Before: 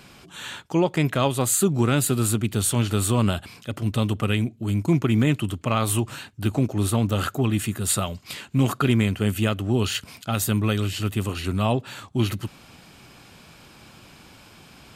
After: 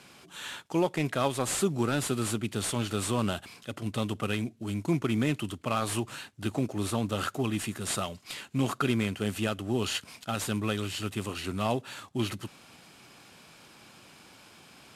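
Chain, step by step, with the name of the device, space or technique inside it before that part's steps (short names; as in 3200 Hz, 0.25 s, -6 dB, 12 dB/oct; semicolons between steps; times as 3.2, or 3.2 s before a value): early wireless headset (HPF 220 Hz 6 dB/oct; CVSD 64 kbps); gain -4 dB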